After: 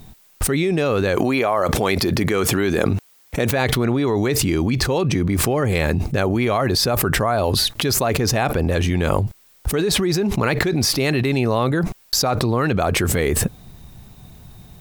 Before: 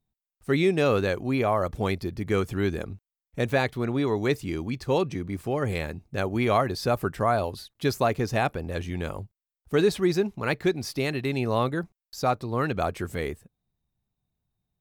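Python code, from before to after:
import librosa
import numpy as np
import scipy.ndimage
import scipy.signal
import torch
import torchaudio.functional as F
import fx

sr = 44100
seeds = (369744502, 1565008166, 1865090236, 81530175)

y = fx.highpass(x, sr, hz=fx.line((1.15, 560.0), (3.5, 190.0)), slope=6, at=(1.15, 3.5), fade=0.02)
y = fx.env_flatten(y, sr, amount_pct=100)
y = F.gain(torch.from_numpy(y), -1.5).numpy()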